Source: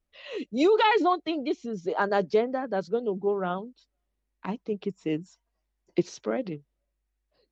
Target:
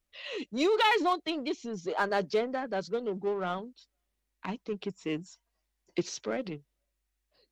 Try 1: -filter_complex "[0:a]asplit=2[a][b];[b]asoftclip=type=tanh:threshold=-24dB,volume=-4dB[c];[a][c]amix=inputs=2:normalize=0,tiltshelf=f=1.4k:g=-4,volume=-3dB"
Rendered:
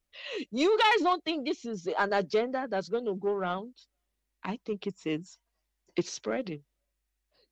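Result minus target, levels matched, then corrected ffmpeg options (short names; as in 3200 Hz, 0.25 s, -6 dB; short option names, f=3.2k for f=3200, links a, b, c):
soft clip: distortion -6 dB
-filter_complex "[0:a]asplit=2[a][b];[b]asoftclip=type=tanh:threshold=-33dB,volume=-4dB[c];[a][c]amix=inputs=2:normalize=0,tiltshelf=f=1.4k:g=-4,volume=-3dB"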